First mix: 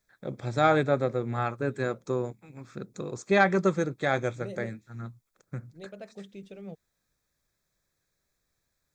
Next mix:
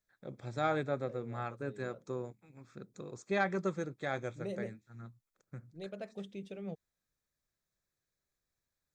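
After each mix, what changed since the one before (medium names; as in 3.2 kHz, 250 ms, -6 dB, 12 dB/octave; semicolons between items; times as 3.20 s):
first voice -10.0 dB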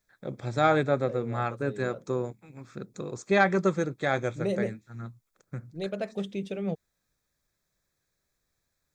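first voice +9.5 dB; second voice +11.0 dB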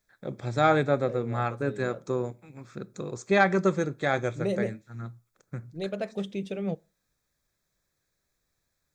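reverb: on, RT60 0.30 s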